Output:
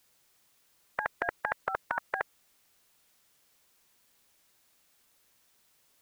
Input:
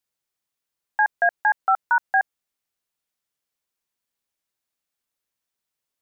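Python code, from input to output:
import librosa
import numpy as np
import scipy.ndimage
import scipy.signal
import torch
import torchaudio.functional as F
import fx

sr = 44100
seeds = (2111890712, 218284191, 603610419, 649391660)

y = fx.spectral_comp(x, sr, ratio=4.0)
y = y * 10.0 ** (-1.5 / 20.0)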